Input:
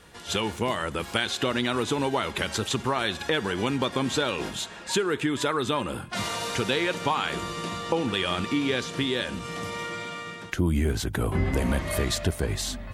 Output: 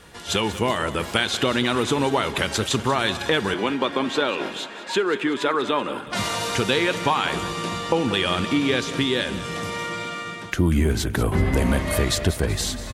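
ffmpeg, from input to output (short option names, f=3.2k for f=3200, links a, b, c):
-filter_complex "[0:a]asettb=1/sr,asplit=3[a][b][c];[a]atrim=end=3.544[d];[b]atrim=start=3.54:end=6.07,asetpts=PTS-STARTPTS,afade=t=in:d=0.004:c=qsin,afade=t=out:st=2.526:d=0.004:c=qsin,acrossover=split=210 4000:gain=0.0891 1 0.251[e][f][g];[e][f][g]amix=inputs=3:normalize=0[h];[c]atrim=start=6.066[i];[d][h]acrossfade=d=0.004:c1=hsin:c2=qsin[j];[j][i]acrossfade=d=0.004:c1=qsin:c2=hsin,aecho=1:1:189|378|567|756|945:0.2|0.102|0.0519|0.0265|0.0135,volume=4.5dB"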